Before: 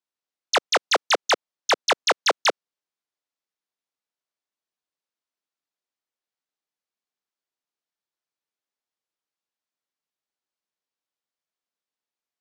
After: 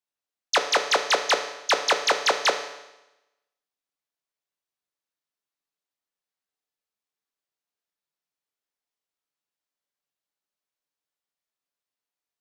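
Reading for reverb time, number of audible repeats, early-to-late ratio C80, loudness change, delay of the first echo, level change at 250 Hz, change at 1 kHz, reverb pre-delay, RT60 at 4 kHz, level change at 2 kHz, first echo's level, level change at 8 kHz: 0.95 s, no echo audible, 11.5 dB, −0.5 dB, no echo audible, −2.0 dB, −1.0 dB, 7 ms, 0.95 s, −0.5 dB, no echo audible, −0.5 dB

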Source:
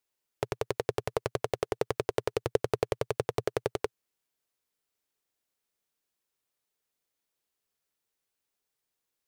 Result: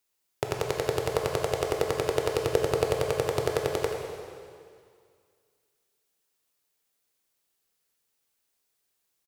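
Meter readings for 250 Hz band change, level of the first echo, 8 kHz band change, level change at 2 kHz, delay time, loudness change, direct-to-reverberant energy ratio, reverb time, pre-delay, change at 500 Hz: +3.5 dB, −12.5 dB, +7.5 dB, +5.0 dB, 81 ms, +4.5 dB, 1.0 dB, 2.1 s, 7 ms, +4.5 dB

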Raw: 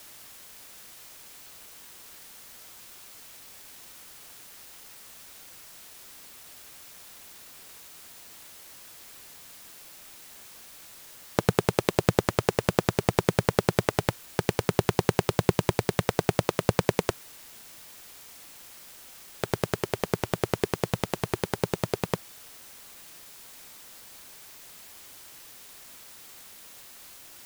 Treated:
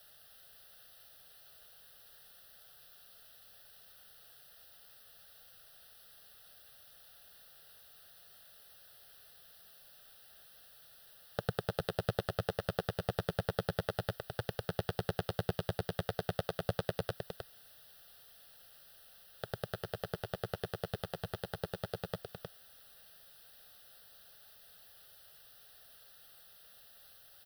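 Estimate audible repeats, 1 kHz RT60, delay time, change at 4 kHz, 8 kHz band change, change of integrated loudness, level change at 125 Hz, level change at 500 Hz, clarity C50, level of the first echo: 1, no reverb audible, 311 ms, −9.5 dB, −17.5 dB, −11.5 dB, −10.5 dB, −11.0 dB, no reverb audible, −6.0 dB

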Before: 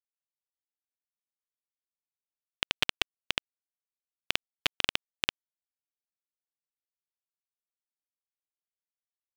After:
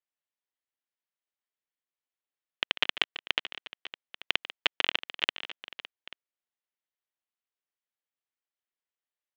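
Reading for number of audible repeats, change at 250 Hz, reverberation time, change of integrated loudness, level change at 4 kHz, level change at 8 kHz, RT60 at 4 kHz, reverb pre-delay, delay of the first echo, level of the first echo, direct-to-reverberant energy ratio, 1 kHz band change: 3, −1.5 dB, no reverb audible, +1.5 dB, +2.5 dB, −9.5 dB, no reverb audible, no reverb audible, 144 ms, −14.5 dB, no reverb audible, +2.0 dB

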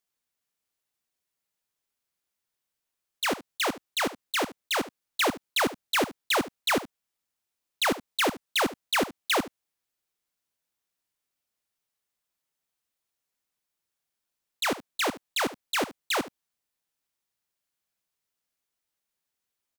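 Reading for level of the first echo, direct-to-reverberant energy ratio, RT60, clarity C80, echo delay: −16.0 dB, no reverb audible, no reverb audible, no reverb audible, 73 ms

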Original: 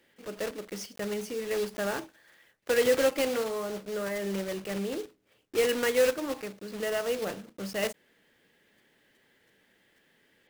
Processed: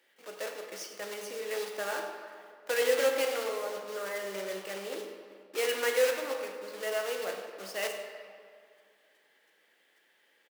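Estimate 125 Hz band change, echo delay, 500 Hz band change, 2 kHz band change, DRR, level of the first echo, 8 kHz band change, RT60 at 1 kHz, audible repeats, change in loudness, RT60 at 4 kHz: below −15 dB, 97 ms, −3.0 dB, −0.5 dB, 3.0 dB, −14.0 dB, −1.0 dB, 2.2 s, 1, −2.5 dB, 1.3 s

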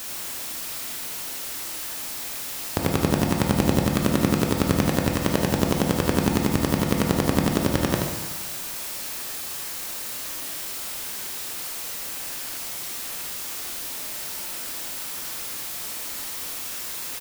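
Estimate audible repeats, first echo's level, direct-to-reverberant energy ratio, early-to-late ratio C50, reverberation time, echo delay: 1, −6.5 dB, −0.5 dB, 1.5 dB, 1.3 s, 78 ms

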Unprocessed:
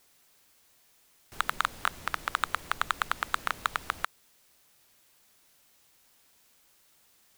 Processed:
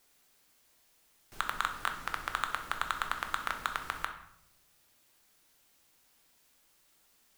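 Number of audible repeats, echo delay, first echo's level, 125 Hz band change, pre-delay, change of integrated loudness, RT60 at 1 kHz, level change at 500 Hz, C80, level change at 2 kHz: no echo audible, no echo audible, no echo audible, −3.0 dB, 3 ms, −3.5 dB, 0.70 s, −3.0 dB, 12.5 dB, −3.5 dB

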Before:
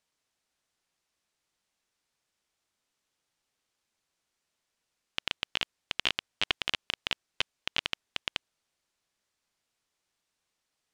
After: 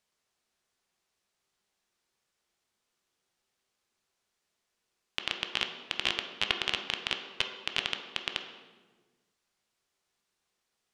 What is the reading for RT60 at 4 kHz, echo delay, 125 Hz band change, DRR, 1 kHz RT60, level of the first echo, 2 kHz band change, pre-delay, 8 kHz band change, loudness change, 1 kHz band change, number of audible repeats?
0.95 s, no echo audible, +0.5 dB, 4.0 dB, 1.2 s, no echo audible, +1.0 dB, 3 ms, +0.5 dB, +0.5 dB, +1.5 dB, no echo audible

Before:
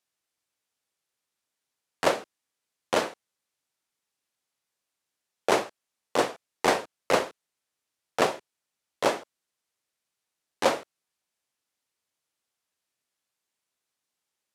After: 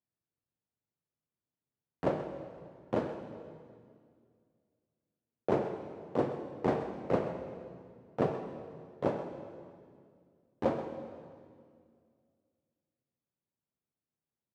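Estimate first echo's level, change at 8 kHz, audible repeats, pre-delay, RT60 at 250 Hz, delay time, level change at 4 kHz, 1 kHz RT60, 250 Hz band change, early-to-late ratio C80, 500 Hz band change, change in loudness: −12.5 dB, below −25 dB, 1, 34 ms, 2.6 s, 130 ms, −22.0 dB, 2.0 s, 0.0 dB, 7.0 dB, −5.0 dB, −7.5 dB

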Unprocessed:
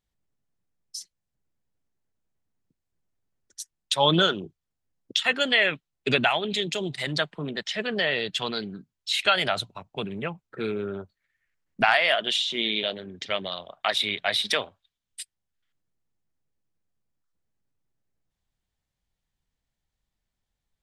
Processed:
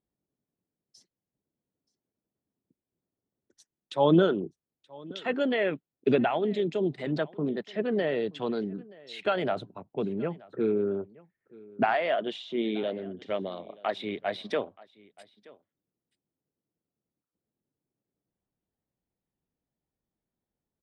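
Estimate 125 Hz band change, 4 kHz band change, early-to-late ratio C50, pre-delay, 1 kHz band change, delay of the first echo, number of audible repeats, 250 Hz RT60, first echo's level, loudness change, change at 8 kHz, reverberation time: −1.0 dB, −16.5 dB, no reverb audible, no reverb audible, −4.0 dB, 927 ms, 1, no reverb audible, −23.0 dB, −4.0 dB, below −20 dB, no reverb audible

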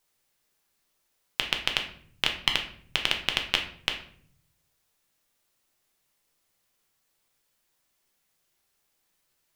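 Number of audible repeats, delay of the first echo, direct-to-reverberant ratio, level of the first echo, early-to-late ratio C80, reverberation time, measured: no echo audible, no echo audible, 3.0 dB, no echo audible, 13.0 dB, 0.55 s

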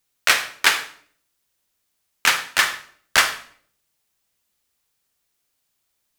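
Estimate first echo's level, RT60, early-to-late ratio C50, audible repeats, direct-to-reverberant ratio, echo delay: no echo audible, 0.55 s, 11.0 dB, no echo audible, 9.0 dB, no echo audible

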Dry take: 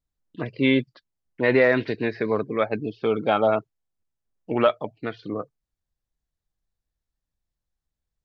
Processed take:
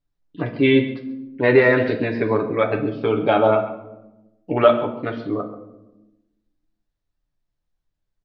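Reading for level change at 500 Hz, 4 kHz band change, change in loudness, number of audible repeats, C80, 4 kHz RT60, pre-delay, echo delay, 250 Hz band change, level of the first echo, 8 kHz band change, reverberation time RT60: +5.0 dB, +2.5 dB, +4.0 dB, 1, 11.5 dB, 0.55 s, 7 ms, 135 ms, +4.5 dB, −16.5 dB, can't be measured, 1.0 s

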